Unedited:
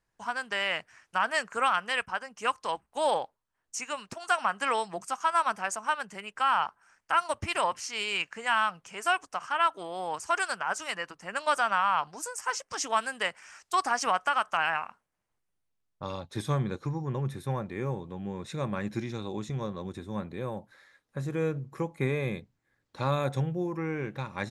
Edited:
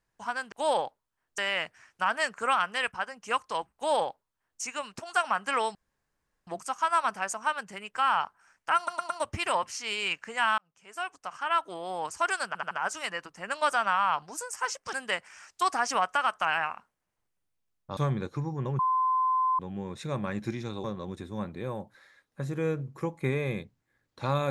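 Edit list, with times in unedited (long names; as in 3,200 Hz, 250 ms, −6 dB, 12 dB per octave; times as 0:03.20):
0:02.89–0:03.75: duplicate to 0:00.52
0:04.89: splice in room tone 0.72 s
0:07.19: stutter 0.11 s, 4 plays
0:08.67–0:09.81: fade in
0:10.56: stutter 0.08 s, 4 plays
0:12.78–0:13.05: remove
0:16.09–0:16.46: remove
0:17.28–0:18.08: beep over 1,030 Hz −22.5 dBFS
0:19.33–0:19.61: remove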